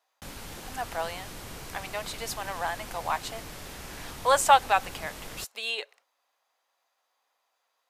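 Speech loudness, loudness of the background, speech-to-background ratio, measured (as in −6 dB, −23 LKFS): −28.5 LKFS, −41.5 LKFS, 13.0 dB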